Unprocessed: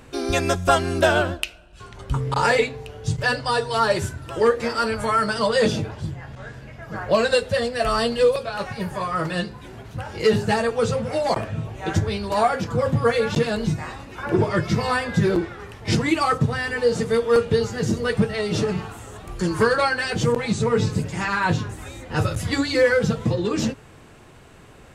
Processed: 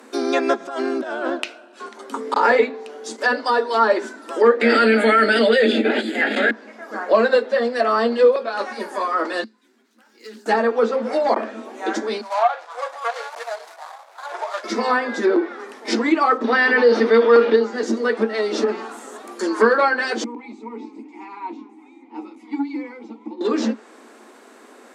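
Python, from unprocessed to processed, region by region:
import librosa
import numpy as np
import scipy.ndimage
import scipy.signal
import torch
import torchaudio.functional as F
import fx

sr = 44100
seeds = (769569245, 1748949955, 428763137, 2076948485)

y = fx.chain(x, sr, fx.high_shelf(hz=4600.0, db=-9.0),
    fx.over_compress(threshold_db=-27.0, ratio=-1.0), at=(0.6, 1.89))
y = fx.chain(y, sr, fx.high_shelf(hz=2300.0, db=12.0),
    fx.fixed_phaser(hz=2500.0, stages=4),
    fx.env_flatten(amount_pct=100), at=(4.61, 6.51))
y = fx.chain(y, sr, fx.tone_stack(knobs='6-0-2'),
    fx.resample_bad(factor=2, down='filtered', up='hold'),
    fx.doppler_dist(depth_ms=0.22), at=(9.44, 10.46))
y = fx.chain(y, sr, fx.median_filter(points=25),
    fx.ellip_highpass(hz=650.0, order=4, stop_db=80), at=(12.21, 14.64))
y = fx.chain(y, sr, fx.savgol(points=15),
    fx.high_shelf(hz=2300.0, db=10.0),
    fx.env_flatten(amount_pct=50), at=(16.44, 17.56))
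y = fx.chain(y, sr, fx.vowel_filter(vowel='u'),
    fx.transformer_sat(knee_hz=380.0), at=(20.24, 23.41))
y = scipy.signal.sosfilt(scipy.signal.cheby1(8, 1.0, 220.0, 'highpass', fs=sr, output='sos'), y)
y = fx.peak_eq(y, sr, hz=2800.0, db=-7.0, octaves=0.54)
y = fx.env_lowpass_down(y, sr, base_hz=2800.0, full_db=-19.0)
y = F.gain(torch.from_numpy(y), 4.5).numpy()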